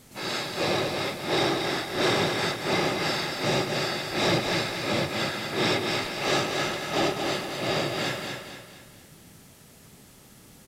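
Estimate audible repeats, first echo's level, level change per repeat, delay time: 4, -5.0 dB, -7.5 dB, 0.23 s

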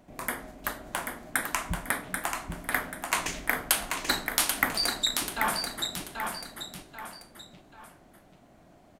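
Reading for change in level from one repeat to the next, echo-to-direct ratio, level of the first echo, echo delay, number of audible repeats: -8.0 dB, -4.5 dB, -5.0 dB, 0.786 s, 3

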